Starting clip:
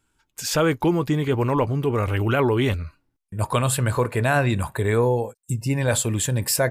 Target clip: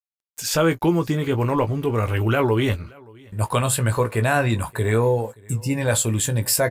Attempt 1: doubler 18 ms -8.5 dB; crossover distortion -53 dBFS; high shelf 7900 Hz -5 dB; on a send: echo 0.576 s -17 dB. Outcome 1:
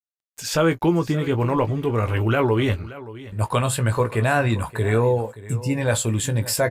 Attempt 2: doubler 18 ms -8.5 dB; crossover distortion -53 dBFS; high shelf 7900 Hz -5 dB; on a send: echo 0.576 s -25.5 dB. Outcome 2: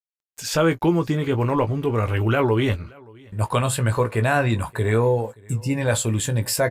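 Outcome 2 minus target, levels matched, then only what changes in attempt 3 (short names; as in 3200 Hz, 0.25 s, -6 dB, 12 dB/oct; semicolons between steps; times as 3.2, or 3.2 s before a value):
8000 Hz band -4.0 dB
change: high shelf 7900 Hz +3.5 dB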